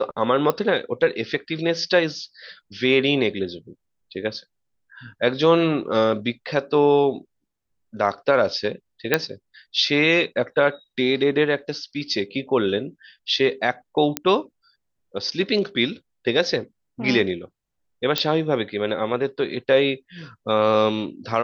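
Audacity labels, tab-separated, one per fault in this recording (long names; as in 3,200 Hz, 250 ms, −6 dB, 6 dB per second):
0.500000	0.500000	click −9 dBFS
9.140000	9.140000	click −3 dBFS
14.170000	14.170000	click −4 dBFS
18.180000	18.180000	click −5 dBFS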